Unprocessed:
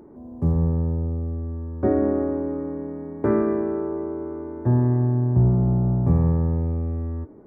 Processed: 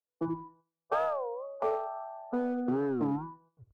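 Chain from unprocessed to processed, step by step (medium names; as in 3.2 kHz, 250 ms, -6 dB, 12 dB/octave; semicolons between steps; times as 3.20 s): tape stop on the ending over 0.31 s; spectral noise reduction 30 dB; gate with hold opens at -50 dBFS; rippled Chebyshev low-pass 760 Hz, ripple 6 dB; peaking EQ 83 Hz -11 dB 0.91 oct; in parallel at -3.5 dB: hard clipper -22.5 dBFS, distortion -13 dB; on the sum: doubling 14 ms -12 dB; algorithmic reverb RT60 0.53 s, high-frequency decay 0.45×, pre-delay 90 ms, DRR 13 dB; speed mistake 7.5 ips tape played at 15 ips; warped record 33 1/3 rpm, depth 250 cents; trim -8.5 dB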